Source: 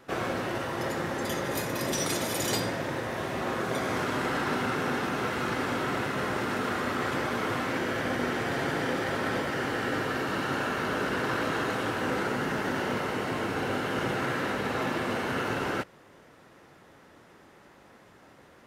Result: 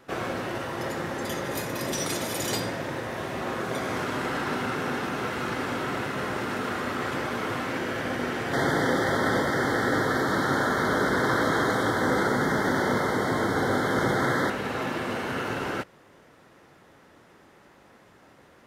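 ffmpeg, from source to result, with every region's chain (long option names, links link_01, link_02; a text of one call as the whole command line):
ffmpeg -i in.wav -filter_complex "[0:a]asettb=1/sr,asplit=3[link_01][link_02][link_03];[link_01]atrim=end=8.534[link_04];[link_02]atrim=start=8.53:end=14.5,asetpts=PTS-STARTPTS,afade=type=in:duration=0.004:curve=qsin,afade=type=out:start_time=5.966:duration=0.004:curve=qsin,asuperstop=centerf=2600:order=12:qfactor=2.7,acontrast=36[link_05];[link_03]atrim=start=14.496[link_06];[link_04][link_05]acrossfade=duration=0.004:curve1=hsin:curve2=qsin[link_07];[link_07][link_06]acrossfade=duration=0.004:curve1=qsin:curve2=hsin" out.wav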